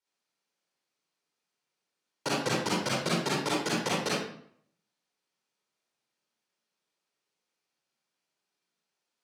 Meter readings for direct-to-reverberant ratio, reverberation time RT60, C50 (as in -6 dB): -6.5 dB, 0.65 s, -2.5 dB